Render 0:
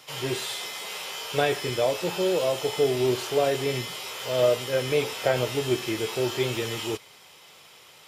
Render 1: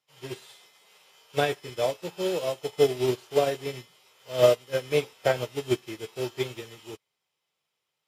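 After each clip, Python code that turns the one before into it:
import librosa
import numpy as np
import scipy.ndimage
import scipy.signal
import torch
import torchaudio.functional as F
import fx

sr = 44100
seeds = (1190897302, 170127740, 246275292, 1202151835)

y = fx.peak_eq(x, sr, hz=150.0, db=2.5, octaves=0.4)
y = fx.upward_expand(y, sr, threshold_db=-41.0, expansion=2.5)
y = y * 10.0 ** (4.5 / 20.0)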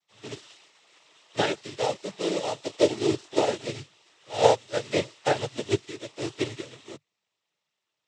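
y = fx.dynamic_eq(x, sr, hz=5500.0, q=0.76, threshold_db=-49.0, ratio=4.0, max_db=5)
y = fx.noise_vocoder(y, sr, seeds[0], bands=12)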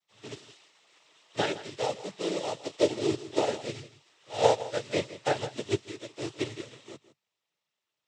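y = x + 10.0 ** (-15.5 / 20.0) * np.pad(x, (int(161 * sr / 1000.0), 0))[:len(x)]
y = y * 10.0 ** (-3.5 / 20.0)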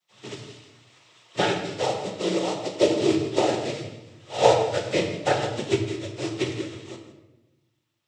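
y = fx.rattle_buzz(x, sr, strikes_db=-30.0, level_db=-29.0)
y = fx.room_shoebox(y, sr, seeds[1], volume_m3=420.0, walls='mixed', distance_m=0.97)
y = y * 10.0 ** (4.0 / 20.0)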